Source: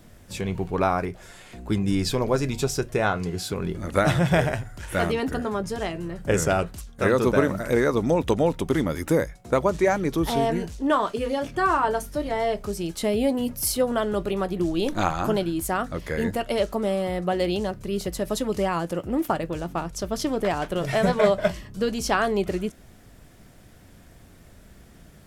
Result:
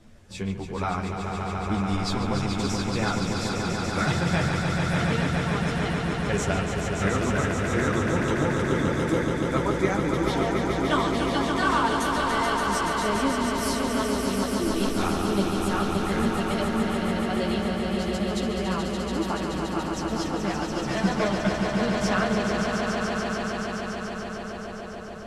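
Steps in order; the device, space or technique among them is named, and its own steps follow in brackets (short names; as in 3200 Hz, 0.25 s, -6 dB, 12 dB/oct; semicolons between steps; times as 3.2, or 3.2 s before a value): string-machine ensemble chorus (ensemble effect; LPF 7400 Hz 12 dB/oct); 10.82–12.81 high shelf 2900 Hz +11.5 dB; swelling echo 0.143 s, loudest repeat 5, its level -6 dB; dynamic EQ 530 Hz, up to -7 dB, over -36 dBFS, Q 1.1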